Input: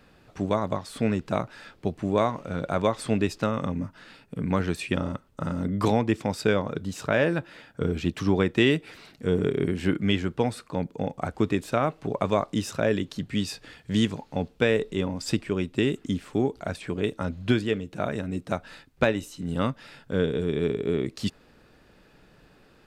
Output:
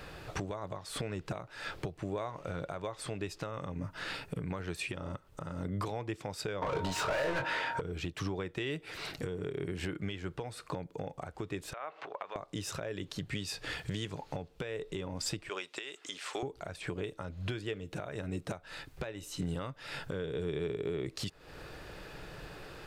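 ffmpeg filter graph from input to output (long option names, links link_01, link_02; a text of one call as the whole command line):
ffmpeg -i in.wav -filter_complex "[0:a]asettb=1/sr,asplit=3[link_01][link_02][link_03];[link_01]atrim=end=6.624[link_04];[link_02]atrim=start=6.62:end=7.81,asetpts=PTS-STARTPTS,afade=type=in:duration=0.004:curve=qsin,afade=type=out:start_time=1.186:duration=0.004:curve=qsin,asplit=2[link_05][link_06];[link_06]highpass=frequency=720:poles=1,volume=38dB,asoftclip=type=tanh:threshold=-7dB[link_07];[link_05][link_07]amix=inputs=2:normalize=0,lowpass=frequency=1800:poles=1,volume=-6dB,aeval=exprs='val(0)+0.1*sin(2*PI*930*n/s)':channel_layout=same,asplit=2[link_08][link_09];[link_09]adelay=22,volume=-5.5dB[link_10];[link_08][link_10]amix=inputs=2:normalize=0,atrim=end_sample=52479[link_11];[link_03]atrim=start=7.806[link_12];[link_04][link_11]acrossfade=duration=0.004:curve1=hsin:curve2=qsin[link_13];[link_13][link_12]acrossfade=duration=0.004:curve1=qsin:curve2=hsin,asettb=1/sr,asplit=3[link_14][link_15][link_16];[link_14]atrim=end=11.734[link_17];[link_15]atrim=start=11.73:end=12.36,asetpts=PTS-STARTPTS,afade=type=in:duration=0.004:curve=qsin,afade=type=out:start_time=0.626:duration=0.004:curve=qsin,acompressor=threshold=-40dB:ratio=5:attack=3.2:release=140:knee=1:detection=peak,highpass=740,lowpass=3000[link_18];[link_16]atrim=start=12.356[link_19];[link_17][link_18]acrossfade=duration=0.004:curve1=hsin:curve2=qsin[link_20];[link_20][link_19]acrossfade=duration=0.004:curve1=qsin:curve2=hsin,asettb=1/sr,asplit=3[link_21][link_22][link_23];[link_21]atrim=end=15.494[link_24];[link_22]atrim=start=15.49:end=16.43,asetpts=PTS-STARTPTS,afade=type=in:duration=0.004:curve=qsin,afade=type=out:start_time=0.936:duration=0.004:curve=qsin,highpass=750,lowpass=5700,aemphasis=mode=production:type=50kf[link_25];[link_23]atrim=start=16.426[link_26];[link_24][link_25]acrossfade=duration=0.004:curve1=hsin:curve2=qsin[link_27];[link_27][link_26]acrossfade=duration=0.004:curve1=qsin:curve2=hsin,equalizer=frequency=230:width_type=o:width=0.41:gain=-14.5,acompressor=threshold=-41dB:ratio=5,alimiter=level_in=11.5dB:limit=-24dB:level=0:latency=1:release=382,volume=-11.5dB,volume=10.5dB" out.wav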